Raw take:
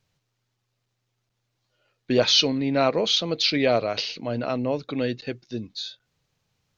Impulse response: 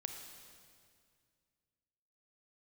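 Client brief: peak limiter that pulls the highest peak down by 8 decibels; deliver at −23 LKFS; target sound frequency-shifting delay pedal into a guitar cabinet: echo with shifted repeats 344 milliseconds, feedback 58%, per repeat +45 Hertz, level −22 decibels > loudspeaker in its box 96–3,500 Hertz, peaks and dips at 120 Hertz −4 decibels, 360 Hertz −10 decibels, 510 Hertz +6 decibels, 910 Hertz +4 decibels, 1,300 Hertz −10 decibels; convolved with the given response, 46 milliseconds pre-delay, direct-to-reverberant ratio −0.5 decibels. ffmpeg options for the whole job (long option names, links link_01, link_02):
-filter_complex "[0:a]alimiter=limit=-14dB:level=0:latency=1,asplit=2[link_01][link_02];[1:a]atrim=start_sample=2205,adelay=46[link_03];[link_02][link_03]afir=irnorm=-1:irlink=0,volume=2dB[link_04];[link_01][link_04]amix=inputs=2:normalize=0,asplit=5[link_05][link_06][link_07][link_08][link_09];[link_06]adelay=344,afreqshift=45,volume=-22dB[link_10];[link_07]adelay=688,afreqshift=90,volume=-26.7dB[link_11];[link_08]adelay=1032,afreqshift=135,volume=-31.5dB[link_12];[link_09]adelay=1376,afreqshift=180,volume=-36.2dB[link_13];[link_05][link_10][link_11][link_12][link_13]amix=inputs=5:normalize=0,highpass=96,equalizer=frequency=120:width_type=q:width=4:gain=-4,equalizer=frequency=360:width_type=q:width=4:gain=-10,equalizer=frequency=510:width_type=q:width=4:gain=6,equalizer=frequency=910:width_type=q:width=4:gain=4,equalizer=frequency=1300:width_type=q:width=4:gain=-10,lowpass=frequency=3500:width=0.5412,lowpass=frequency=3500:width=1.3066,volume=0.5dB"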